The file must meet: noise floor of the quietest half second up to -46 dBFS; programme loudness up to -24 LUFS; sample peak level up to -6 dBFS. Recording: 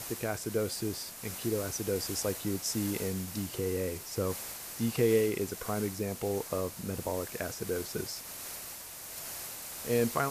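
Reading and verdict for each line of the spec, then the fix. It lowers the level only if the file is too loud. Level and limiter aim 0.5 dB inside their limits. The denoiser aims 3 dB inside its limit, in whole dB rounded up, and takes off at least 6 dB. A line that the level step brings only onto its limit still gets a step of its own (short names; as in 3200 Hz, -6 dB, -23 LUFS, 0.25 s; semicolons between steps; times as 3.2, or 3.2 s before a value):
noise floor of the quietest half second -44 dBFS: fail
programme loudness -33.5 LUFS: OK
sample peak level -15.5 dBFS: OK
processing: denoiser 6 dB, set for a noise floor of -44 dBFS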